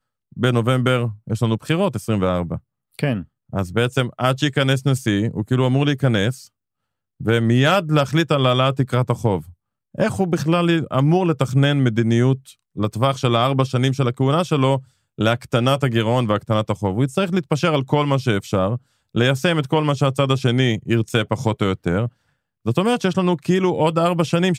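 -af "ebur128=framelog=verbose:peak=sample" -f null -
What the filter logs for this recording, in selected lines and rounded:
Integrated loudness:
  I:         -19.6 LUFS
  Threshold: -29.8 LUFS
Loudness range:
  LRA:         2.5 LU
  Threshold: -39.9 LUFS
  LRA low:   -21.3 LUFS
  LRA high:  -18.9 LUFS
Sample peak:
  Peak:       -2.2 dBFS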